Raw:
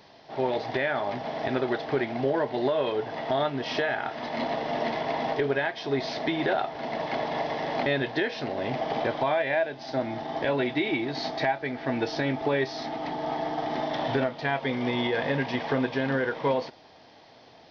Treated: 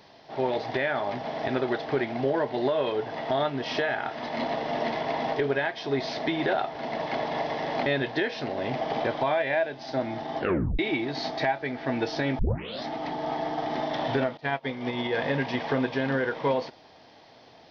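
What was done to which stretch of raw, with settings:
10.38 s: tape stop 0.41 s
12.39 s: tape start 0.45 s
14.37–15.11 s: upward expansion 2.5:1, over -37 dBFS

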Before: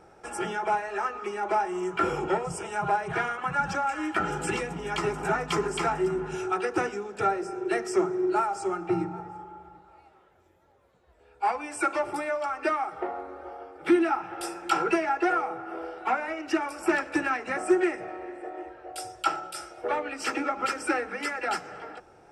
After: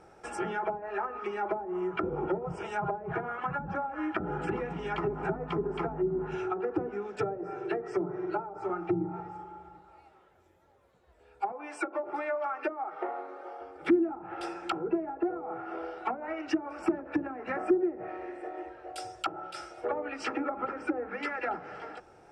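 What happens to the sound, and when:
7.16–8.70 s: comb 6.8 ms
11.52–13.61 s: high-pass 330 Hz
20.39–21.23 s: treble shelf 3.2 kHz -9 dB
whole clip: low-pass that closes with the level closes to 440 Hz, closed at -22.5 dBFS; trim -1.5 dB

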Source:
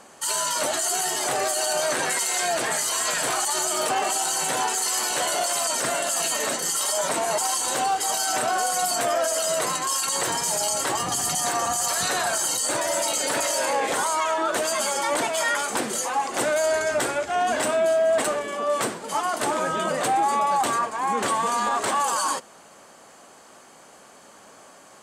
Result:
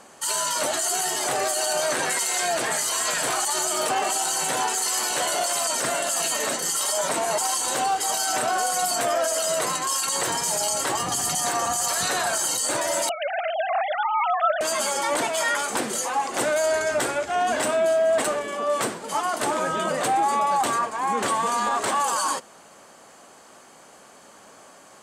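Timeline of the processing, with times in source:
13.09–14.61 s: formants replaced by sine waves

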